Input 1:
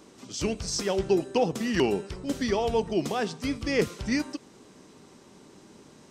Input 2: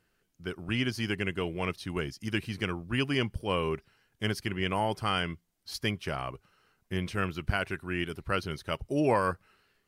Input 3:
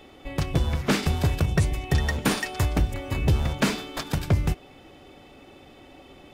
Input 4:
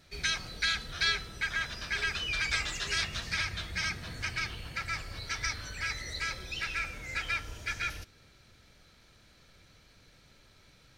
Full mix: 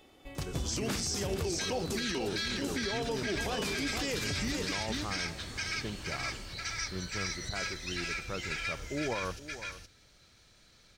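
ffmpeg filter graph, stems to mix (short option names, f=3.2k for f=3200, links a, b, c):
-filter_complex "[0:a]acompressor=threshold=-27dB:ratio=6,adelay=350,volume=-0.5dB,asplit=2[a][b];[b]volume=-7.5dB[c];[1:a]lowpass=1.1k,volume=-6.5dB,asplit=2[d][e];[e]volume=-16dB[f];[2:a]volume=-10.5dB,asplit=3[g][h][i];[g]atrim=end=1.51,asetpts=PTS-STARTPTS,afade=t=out:st=1.506:d=0.004:c=hsin[j];[h]atrim=start=1.51:end=3.37,asetpts=PTS-STARTPTS,volume=0[k];[i]atrim=start=3.37,asetpts=PTS-STARTPTS,afade=t=in:d=0.004:c=hsin[l];[j][k][l]concat=n=3:v=0:a=1,asplit=2[m][n];[n]volume=-11.5dB[o];[3:a]equalizer=f=12k:w=3.2:g=-13.5,adelay=1350,volume=-4dB,asplit=2[p][q];[q]volume=-4dB[r];[c][f][o][r]amix=inputs=4:normalize=0,aecho=0:1:469:1[s];[a][d][m][p][s]amix=inputs=5:normalize=0,bass=f=250:g=-1,treble=f=4k:g=7,alimiter=level_in=0.5dB:limit=-24dB:level=0:latency=1:release=38,volume=-0.5dB"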